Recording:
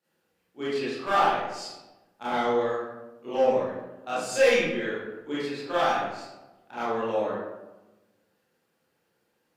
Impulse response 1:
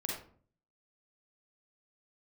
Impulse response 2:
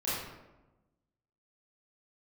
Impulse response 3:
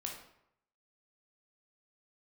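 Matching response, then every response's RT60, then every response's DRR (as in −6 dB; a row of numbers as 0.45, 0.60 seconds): 2; 0.50, 1.1, 0.75 seconds; −2.5, −11.0, 0.0 decibels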